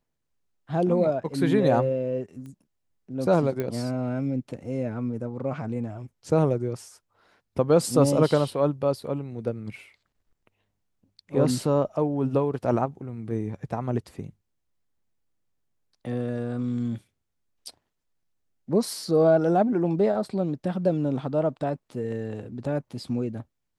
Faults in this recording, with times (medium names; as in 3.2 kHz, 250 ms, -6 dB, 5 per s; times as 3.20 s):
2.46 s: pop -32 dBFS
3.60 s: pop -17 dBFS